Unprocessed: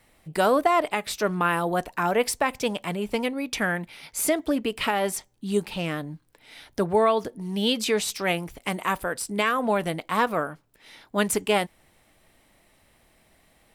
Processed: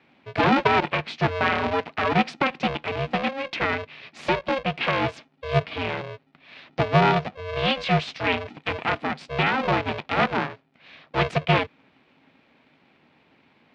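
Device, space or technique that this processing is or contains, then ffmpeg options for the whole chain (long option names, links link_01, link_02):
ring modulator pedal into a guitar cabinet: -af "aeval=exprs='val(0)*sgn(sin(2*PI*270*n/s))':channel_layout=same,highpass=100,equalizer=frequency=150:width_type=q:width=4:gain=8,equalizer=frequency=240:width_type=q:width=4:gain=4,equalizer=frequency=680:width_type=q:width=4:gain=3,equalizer=frequency=2400:width_type=q:width=4:gain=5,lowpass=frequency=4000:width=0.5412,lowpass=frequency=4000:width=1.3066"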